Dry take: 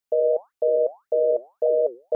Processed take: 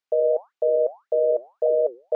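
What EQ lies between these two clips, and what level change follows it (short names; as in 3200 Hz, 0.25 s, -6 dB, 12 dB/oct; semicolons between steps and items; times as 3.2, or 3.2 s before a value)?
HPF 690 Hz 6 dB/oct; air absorption 110 m; +4.5 dB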